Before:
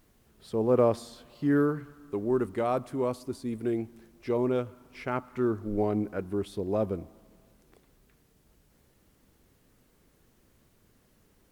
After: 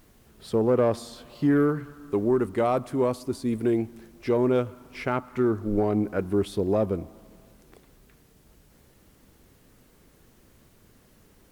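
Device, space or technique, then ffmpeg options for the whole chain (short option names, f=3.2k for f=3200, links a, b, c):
soft clipper into limiter: -af "asoftclip=type=tanh:threshold=-15dB,alimiter=limit=-21.5dB:level=0:latency=1:release=450,volume=7dB"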